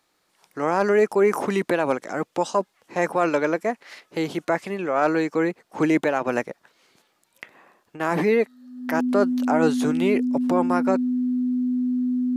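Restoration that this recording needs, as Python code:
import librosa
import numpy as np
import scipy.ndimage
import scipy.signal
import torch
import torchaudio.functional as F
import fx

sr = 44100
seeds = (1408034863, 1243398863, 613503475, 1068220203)

y = fx.notch(x, sr, hz=250.0, q=30.0)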